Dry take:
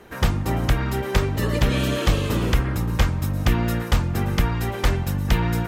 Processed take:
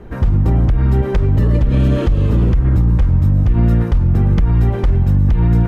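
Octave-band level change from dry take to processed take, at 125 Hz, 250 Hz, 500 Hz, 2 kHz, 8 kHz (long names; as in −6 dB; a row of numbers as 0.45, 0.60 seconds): +9.5 dB, +6.5 dB, +3.0 dB, −6.5 dB, below −10 dB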